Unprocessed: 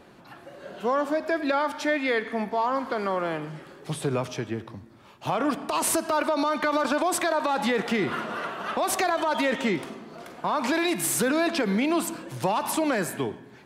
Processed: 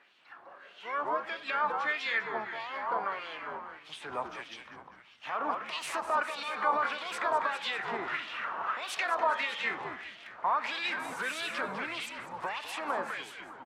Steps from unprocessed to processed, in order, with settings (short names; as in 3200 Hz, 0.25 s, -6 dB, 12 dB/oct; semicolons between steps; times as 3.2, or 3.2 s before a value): HPF 43 Hz; harmoniser -5 st -12 dB, +12 st -14 dB; frequency-shifting echo 0.2 s, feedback 50%, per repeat -76 Hz, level -4.5 dB; LFO band-pass sine 1.6 Hz 960–3200 Hz